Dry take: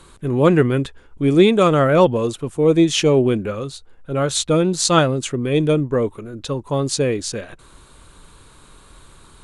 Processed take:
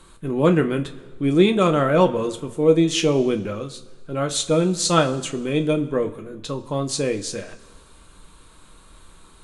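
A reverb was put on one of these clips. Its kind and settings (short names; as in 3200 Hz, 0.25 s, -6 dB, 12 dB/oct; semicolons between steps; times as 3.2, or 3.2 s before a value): two-slope reverb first 0.2 s, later 1.5 s, from -18 dB, DRR 5.5 dB; gain -4 dB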